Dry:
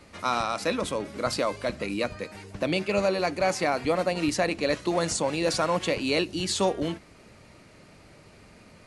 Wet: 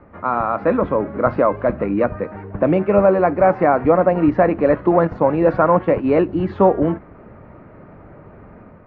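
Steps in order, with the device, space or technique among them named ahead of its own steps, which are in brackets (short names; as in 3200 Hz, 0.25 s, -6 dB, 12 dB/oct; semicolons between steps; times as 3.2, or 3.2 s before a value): 5.07–6.19 gate -29 dBFS, range -8 dB; action camera in a waterproof case (LPF 1500 Hz 24 dB/oct; AGC gain up to 5 dB; gain +6.5 dB; AAC 48 kbps 16000 Hz)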